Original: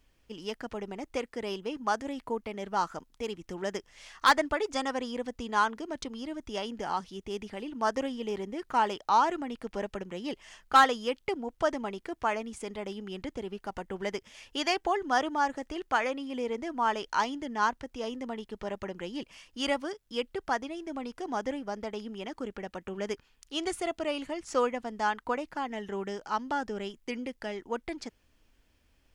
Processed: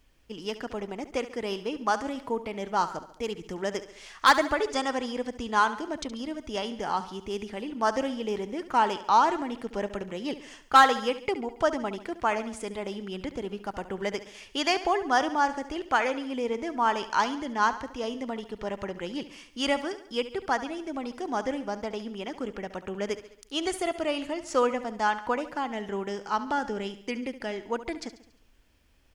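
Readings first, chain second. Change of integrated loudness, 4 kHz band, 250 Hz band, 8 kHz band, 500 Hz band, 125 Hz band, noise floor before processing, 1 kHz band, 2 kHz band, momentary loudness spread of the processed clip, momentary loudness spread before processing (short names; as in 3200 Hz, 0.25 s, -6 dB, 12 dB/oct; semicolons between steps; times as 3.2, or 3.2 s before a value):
+3.0 dB, +3.0 dB, +3.0 dB, +3.0 dB, +3.0 dB, +3.0 dB, -68 dBFS, +3.5 dB, +3.0 dB, 12 LU, 12 LU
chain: feedback echo 70 ms, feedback 53%, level -14 dB; gain +3 dB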